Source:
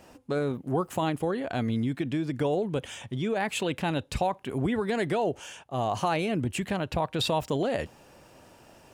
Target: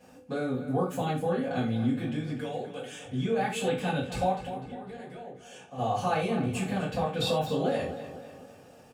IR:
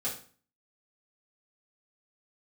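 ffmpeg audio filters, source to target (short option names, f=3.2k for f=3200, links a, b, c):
-filter_complex "[0:a]asettb=1/sr,asplit=3[a][b][c];[a]atrim=end=2.344[d];[b]atrim=start=2.34:end=3.06,asetpts=PTS-STARTPTS,afade=t=in:d=0.004:c=qsin,afade=t=out:st=0.716:d=0.004:c=qsin,highpass=f=1.1k:p=1[e];[c]atrim=start=3.056[f];[d][e]acrossfade=d=0.004:c1=hsin:c2=qsin[g];[g][f]acrossfade=d=0.004:c1=qsin:c2=hsin,asettb=1/sr,asplit=3[h][i][j];[h]atrim=end=4.374[k];[i]atrim=start=4.37:end=5.78,asetpts=PTS-STARTPTS,afade=t=in:d=0.004:c=qsin,afade=t=out:st=1.406:d=0.004:c=qsin,acompressor=threshold=-39dB:ratio=16[l];[j]atrim=start=5.776[m];[k][l]acrossfade=d=0.004:c1=hsin:c2=qsin[n];[n][m]acrossfade=d=0.004:c1=qsin:c2=hsin,asplit=2[o][p];[p]adelay=250,lowpass=f=4.7k:p=1,volume=-11dB,asplit=2[q][r];[r]adelay=250,lowpass=f=4.7k:p=1,volume=0.49,asplit=2[s][t];[t]adelay=250,lowpass=f=4.7k:p=1,volume=0.49,asplit=2[u][v];[v]adelay=250,lowpass=f=4.7k:p=1,volume=0.49,asplit=2[w][x];[x]adelay=250,lowpass=f=4.7k:p=1,volume=0.49[y];[o][q][s][u][w][y]amix=inputs=6:normalize=0[z];[1:a]atrim=start_sample=2205,afade=t=out:st=0.16:d=0.01,atrim=end_sample=7497[aa];[z][aa]afir=irnorm=-1:irlink=0,volume=-5.5dB"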